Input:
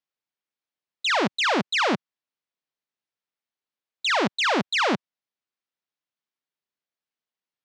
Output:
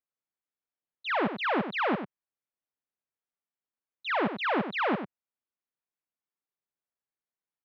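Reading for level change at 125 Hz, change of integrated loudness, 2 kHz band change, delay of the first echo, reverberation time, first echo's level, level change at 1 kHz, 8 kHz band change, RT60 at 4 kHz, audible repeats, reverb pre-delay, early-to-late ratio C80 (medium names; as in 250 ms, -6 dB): -3.5 dB, -6.5 dB, -6.5 dB, 95 ms, no reverb, -9.5 dB, -4.5 dB, under -30 dB, no reverb, 1, no reverb, no reverb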